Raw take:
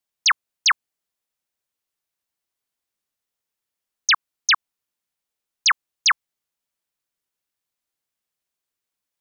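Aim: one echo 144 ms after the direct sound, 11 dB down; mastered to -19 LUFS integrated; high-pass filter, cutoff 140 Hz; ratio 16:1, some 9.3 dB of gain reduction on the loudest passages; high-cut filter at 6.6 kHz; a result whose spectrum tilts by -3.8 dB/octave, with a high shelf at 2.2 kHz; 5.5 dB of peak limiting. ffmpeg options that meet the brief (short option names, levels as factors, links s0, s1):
-af "highpass=140,lowpass=6600,highshelf=f=2200:g=-4.5,acompressor=threshold=0.0562:ratio=16,alimiter=limit=0.0668:level=0:latency=1,aecho=1:1:144:0.282,volume=5.31"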